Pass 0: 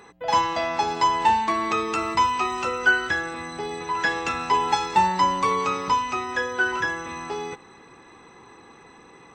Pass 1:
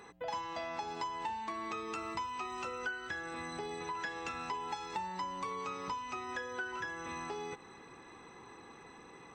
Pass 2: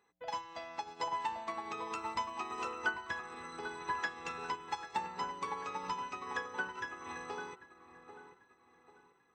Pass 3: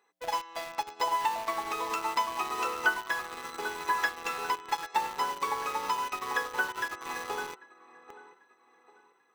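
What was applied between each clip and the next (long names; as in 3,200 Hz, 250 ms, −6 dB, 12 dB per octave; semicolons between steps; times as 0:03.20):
downward compressor 5 to 1, threshold −33 dBFS, peak gain reduction 17 dB; level −5 dB
low-shelf EQ 430 Hz −4.5 dB; delay with a low-pass on its return 792 ms, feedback 58%, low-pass 1,600 Hz, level −3.5 dB; expander for the loud parts 2.5 to 1, over −51 dBFS; level +6 dB
high-pass filter 350 Hz 12 dB per octave; in parallel at −3.5 dB: bit reduction 7 bits; on the sum: level +3.5 dB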